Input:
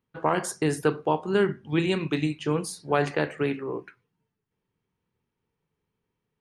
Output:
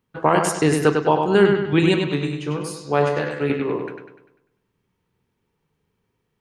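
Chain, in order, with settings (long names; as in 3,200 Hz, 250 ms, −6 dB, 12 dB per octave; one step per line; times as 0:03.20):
0:01.94–0:03.50: tuned comb filter 72 Hz, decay 0.26 s, harmonics all, mix 80%
bucket-brigade delay 99 ms, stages 4,096, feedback 47%, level −5 dB
level +6.5 dB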